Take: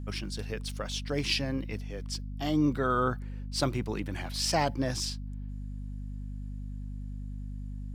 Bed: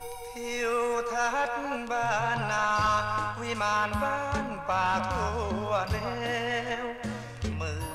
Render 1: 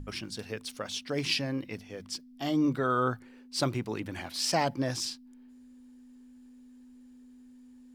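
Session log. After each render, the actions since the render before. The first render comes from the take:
mains-hum notches 50/100/150/200 Hz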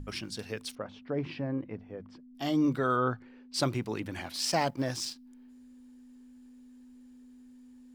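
0:00.75–0:02.35: low-pass filter 1,200 Hz
0:02.96–0:03.54: high-frequency loss of the air 160 metres
0:04.36–0:05.16: mu-law and A-law mismatch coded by A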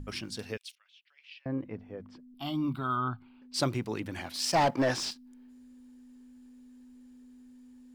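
0:00.57–0:01.46: four-pole ladder high-pass 2,300 Hz, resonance 45%
0:02.34–0:03.42: phaser with its sweep stopped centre 1,800 Hz, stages 6
0:04.55–0:05.11: mid-hump overdrive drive 22 dB, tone 1,700 Hz, clips at −16 dBFS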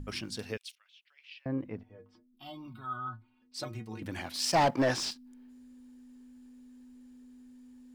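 0:01.83–0:04.02: stiff-string resonator 110 Hz, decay 0.23 s, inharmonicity 0.008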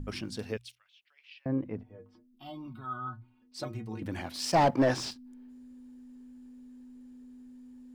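tilt shelving filter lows +3.5 dB, about 1,200 Hz
mains-hum notches 60/120 Hz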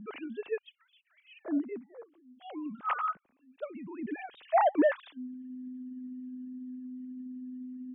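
three sine waves on the formant tracks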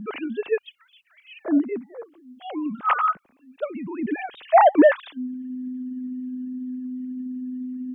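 level +10.5 dB

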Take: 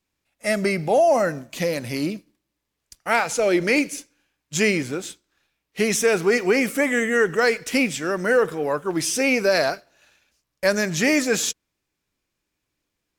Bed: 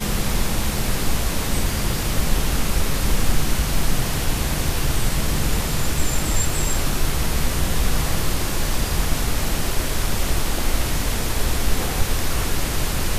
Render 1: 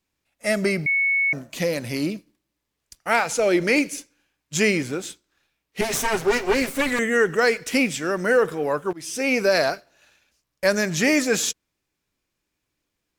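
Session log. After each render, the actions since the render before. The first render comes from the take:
0:00.86–0:01.33: beep over 2,210 Hz −17.5 dBFS
0:05.81–0:06.99: lower of the sound and its delayed copy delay 7.6 ms
0:08.93–0:09.39: fade in, from −22.5 dB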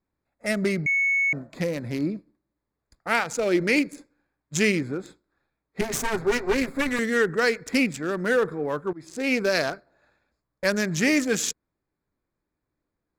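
adaptive Wiener filter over 15 samples
dynamic equaliser 690 Hz, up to −6 dB, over −36 dBFS, Q 1.1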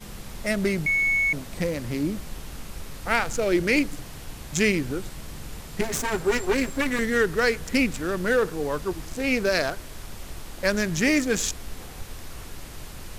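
mix in bed −17 dB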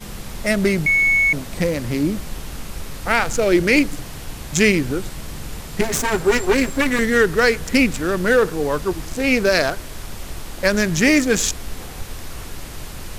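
level +6.5 dB
brickwall limiter −3 dBFS, peak gain reduction 2.5 dB

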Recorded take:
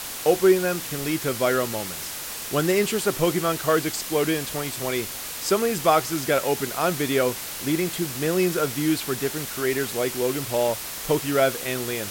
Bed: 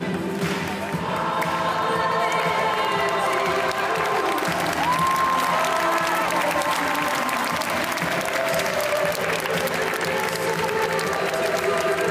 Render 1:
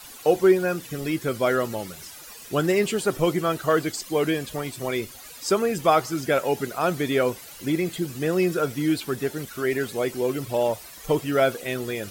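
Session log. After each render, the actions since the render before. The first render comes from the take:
broadband denoise 14 dB, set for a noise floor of −34 dBFS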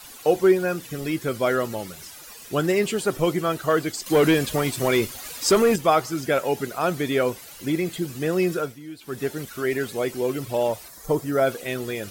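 0:04.06–0:05.76: leveller curve on the samples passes 2
0:08.54–0:09.24: duck −15.5 dB, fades 0.25 s
0:10.88–0:11.47: parametric band 2,800 Hz −13.5 dB 0.75 octaves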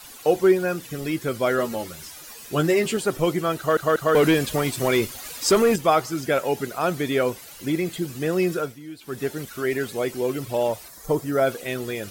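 0:01.57–0:02.97: double-tracking delay 13 ms −5 dB
0:03.58: stutter in place 0.19 s, 3 plays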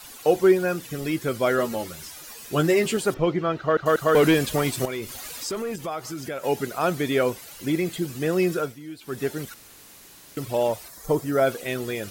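0:03.14–0:03.86: high-frequency loss of the air 220 metres
0:04.85–0:06.44: downward compressor 3 to 1, threshold −31 dBFS
0:09.54–0:10.37: fill with room tone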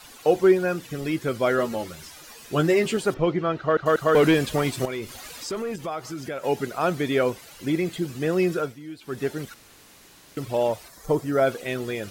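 high-shelf EQ 8,100 Hz −9 dB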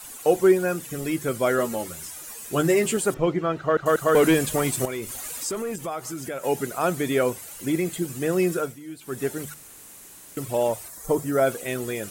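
high shelf with overshoot 6,300 Hz +9 dB, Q 1.5
mains-hum notches 50/100/150 Hz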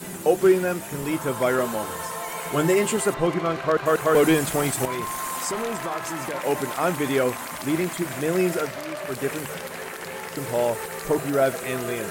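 mix in bed −11 dB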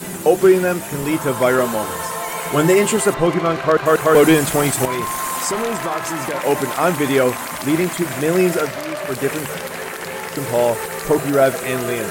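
level +6.5 dB
brickwall limiter −3 dBFS, peak gain reduction 1.5 dB

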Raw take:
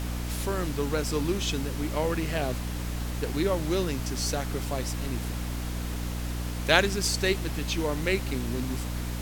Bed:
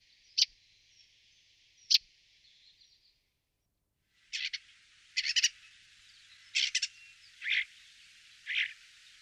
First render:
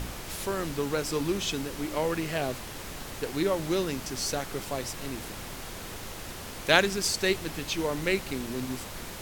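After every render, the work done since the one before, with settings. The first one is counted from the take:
hum removal 60 Hz, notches 5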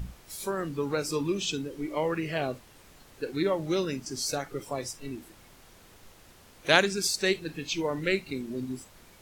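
noise reduction from a noise print 15 dB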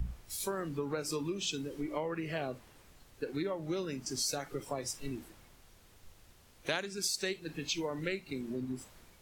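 downward compressor 6 to 1, threshold −33 dBFS, peak gain reduction 17 dB
multiband upward and downward expander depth 40%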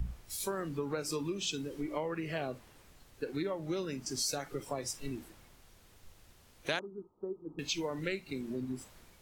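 0:06.79–0:07.59: Chebyshev low-pass with heavy ripple 1,300 Hz, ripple 9 dB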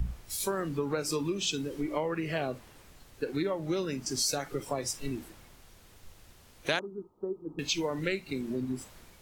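level +4.5 dB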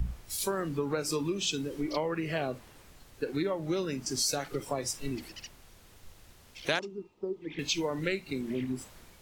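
mix in bed −19 dB

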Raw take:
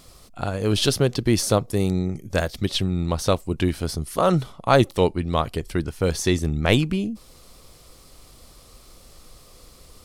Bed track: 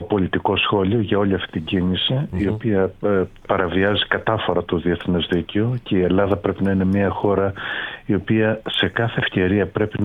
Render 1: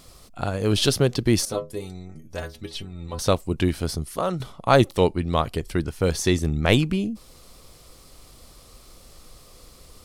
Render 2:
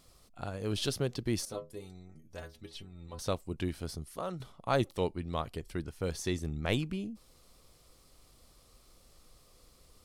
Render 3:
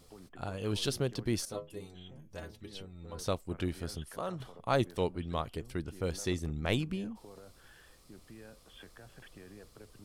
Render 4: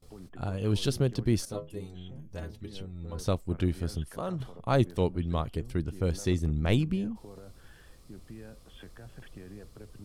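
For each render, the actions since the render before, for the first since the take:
0:01.45–0:03.19: stiff-string resonator 75 Hz, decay 0.32 s, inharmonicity 0.008; 0:03.94–0:04.40: fade out, to −11.5 dB
level −12.5 dB
mix in bed track −34.5 dB
noise gate with hold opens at −50 dBFS; low-shelf EQ 320 Hz +9.5 dB

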